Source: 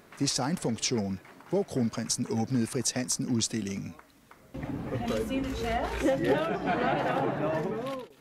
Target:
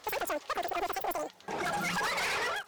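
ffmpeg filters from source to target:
-af "aemphasis=mode=reproduction:type=50fm,asoftclip=type=hard:threshold=0.0355,asetrate=135387,aresample=44100"

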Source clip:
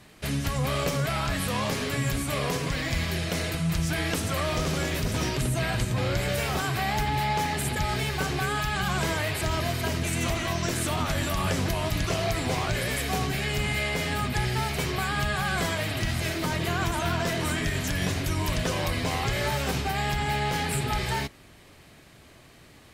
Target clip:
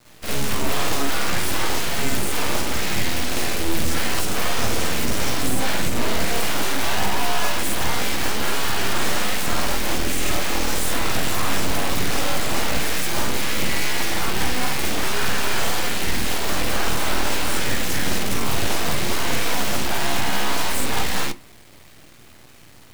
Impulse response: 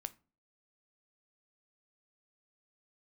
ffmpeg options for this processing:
-filter_complex "[0:a]acrusher=bits=6:dc=4:mix=0:aa=0.000001,aeval=exprs='abs(val(0))':c=same,asplit=2[s0][s1];[1:a]atrim=start_sample=2205,adelay=51[s2];[s1][s2]afir=irnorm=-1:irlink=0,volume=2.37[s3];[s0][s3]amix=inputs=2:normalize=0"

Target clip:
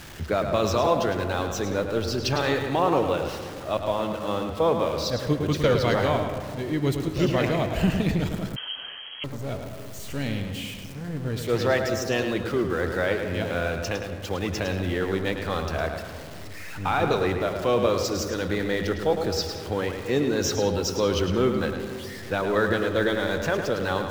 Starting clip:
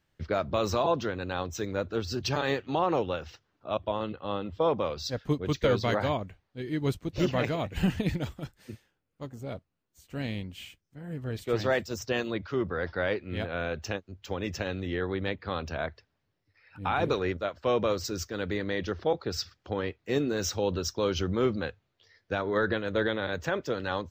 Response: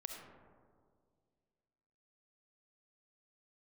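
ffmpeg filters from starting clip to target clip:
-filter_complex "[0:a]aeval=exprs='val(0)+0.5*0.0106*sgn(val(0))':c=same,asplit=2[s0][s1];[1:a]atrim=start_sample=2205,highshelf=f=10000:g=-10.5,adelay=107[s2];[s1][s2]afir=irnorm=-1:irlink=0,volume=0.75[s3];[s0][s3]amix=inputs=2:normalize=0,asettb=1/sr,asplit=3[s4][s5][s6];[s4]atrim=end=8.564[s7];[s5]atrim=start=8.56:end=9.24,asetpts=PTS-STARTPTS,afade=t=in:d=0.004:c=qsin,afade=t=out:st=0.676:d=0.004:c=qsin,lowpass=f=2800:t=q:w=0.5098,lowpass=f=2800:t=q:w=0.6013,lowpass=f=2800:t=q:w=0.9,lowpass=f=2800:t=q:w=2.563,afreqshift=-3300[s8];[s6]atrim=start=9.236[s9];[s7][s8]acrossfade=d=0.004:c1=hsin:c2=qsin[s10];[s10][s9]acrossfade=d=0.004:c1=qsin:c2=hsin,volume=1.41"

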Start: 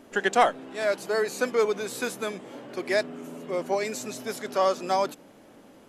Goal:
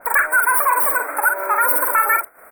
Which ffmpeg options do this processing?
-filter_complex "[0:a]agate=range=0.0224:threshold=0.0112:ratio=3:detection=peak,equalizer=f=125:t=o:w=0.33:g=4,equalizer=f=630:t=o:w=0.33:g=8,equalizer=f=2500:t=o:w=0.33:g=-8,asplit=2[s0][s1];[s1]acompressor=threshold=0.0251:ratio=6,volume=1.26[s2];[s0][s2]amix=inputs=2:normalize=0,alimiter=limit=0.2:level=0:latency=1,acompressor=mode=upward:threshold=0.01:ratio=2.5,crystalizer=i=7.5:c=0,asoftclip=type=hard:threshold=0.211,asuperstop=centerf=1900:order=20:qfactor=0.75,aecho=1:1:114:0.501,asetrate=103194,aresample=44100,adynamicequalizer=threshold=0.0224:dfrequency=2600:dqfactor=0.7:tfrequency=2600:tqfactor=0.7:attack=5:release=100:ratio=0.375:range=1.5:mode=cutabove:tftype=highshelf,volume=1.78"

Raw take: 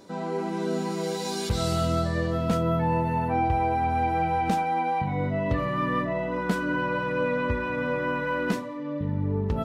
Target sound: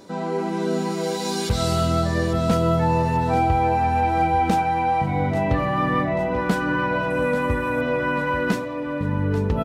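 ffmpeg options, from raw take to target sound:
-filter_complex "[0:a]asettb=1/sr,asplit=3[s0][s1][s2];[s0]atrim=end=7.104[s3];[s1]atrim=start=7.1:end=7.81,asetpts=PTS-STARTPTS,afade=t=in:d=0.004:c=qsin,afade=t=out:st=0.706:d=0.004:c=qsin,highshelf=f=6700:t=q:w=1.5:g=12.5[s4];[s2]atrim=start=7.806[s5];[s3][s4]acrossfade=d=0.004:c1=hsin:c2=qsin[s6];[s6][s5]acrossfade=d=0.004:c1=qsin:c2=hsin,aecho=1:1:838|1676|2514|3352|4190:0.266|0.133|0.0665|0.0333|0.0166,volume=1.68"

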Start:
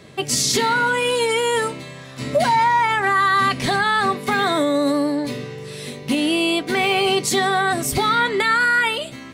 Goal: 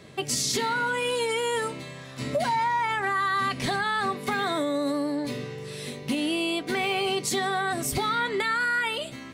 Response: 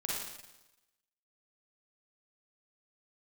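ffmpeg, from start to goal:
-af "acompressor=threshold=0.0794:ratio=2,volume=0.631"

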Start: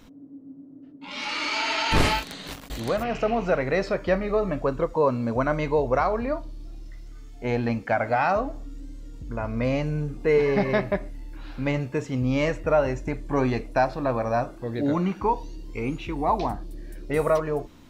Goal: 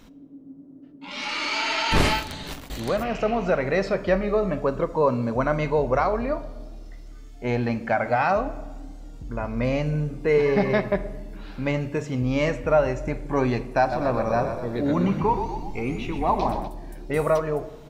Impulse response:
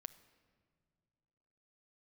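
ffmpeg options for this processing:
-filter_complex "[0:a]asplit=3[s0][s1][s2];[s0]afade=t=out:st=13.91:d=0.02[s3];[s1]asplit=8[s4][s5][s6][s7][s8][s9][s10][s11];[s5]adelay=124,afreqshift=-38,volume=0.422[s12];[s6]adelay=248,afreqshift=-76,volume=0.24[s13];[s7]adelay=372,afreqshift=-114,volume=0.136[s14];[s8]adelay=496,afreqshift=-152,volume=0.0785[s15];[s9]adelay=620,afreqshift=-190,volume=0.0447[s16];[s10]adelay=744,afreqshift=-228,volume=0.0254[s17];[s11]adelay=868,afreqshift=-266,volume=0.0145[s18];[s4][s12][s13][s14][s15][s16][s17][s18]amix=inputs=8:normalize=0,afade=t=in:st=13.91:d=0.02,afade=t=out:st=16.67:d=0.02[s19];[s2]afade=t=in:st=16.67:d=0.02[s20];[s3][s19][s20]amix=inputs=3:normalize=0[s21];[1:a]atrim=start_sample=2205,asetrate=57330,aresample=44100[s22];[s21][s22]afir=irnorm=-1:irlink=0,volume=2.66"

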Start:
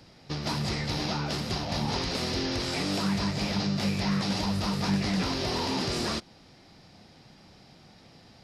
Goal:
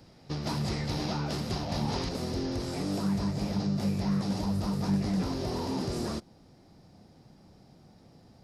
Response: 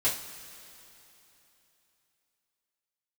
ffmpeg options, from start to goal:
-af "asetnsamples=n=441:p=0,asendcmd='2.09 equalizer g -13.5',equalizer=f=2800:t=o:w=2.6:g=-6.5"

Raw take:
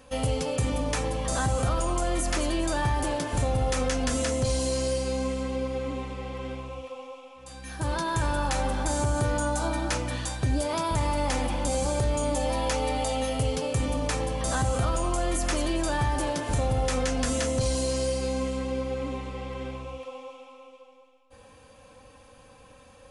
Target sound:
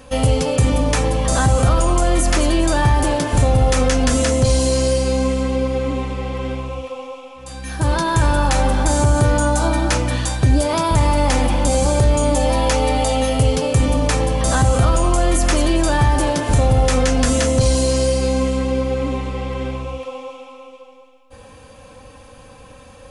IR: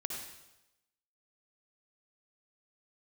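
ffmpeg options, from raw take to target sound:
-af "lowshelf=f=240:g=3.5,acontrast=29,volume=1.58"

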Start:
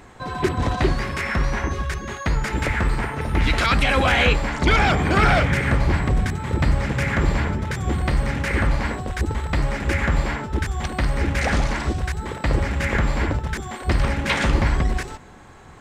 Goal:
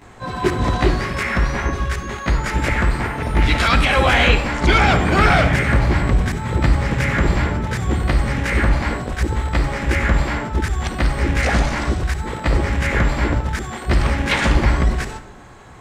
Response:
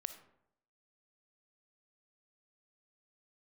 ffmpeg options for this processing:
-filter_complex "[0:a]asplit=2[s0][s1];[1:a]atrim=start_sample=2205,adelay=17[s2];[s1][s2]afir=irnorm=-1:irlink=0,volume=3.35[s3];[s0][s3]amix=inputs=2:normalize=0,volume=0.531"

